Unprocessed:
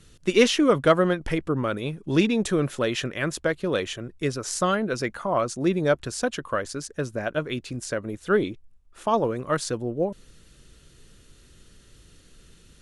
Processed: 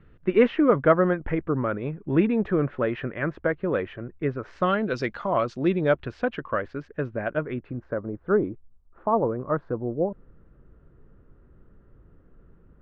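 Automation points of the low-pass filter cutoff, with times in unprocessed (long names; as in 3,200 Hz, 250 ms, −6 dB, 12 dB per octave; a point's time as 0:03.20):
low-pass filter 24 dB per octave
0:04.42 2,000 Hz
0:05.01 4,700 Hz
0:06.45 2,400 Hz
0:07.26 2,400 Hz
0:08.01 1,300 Hz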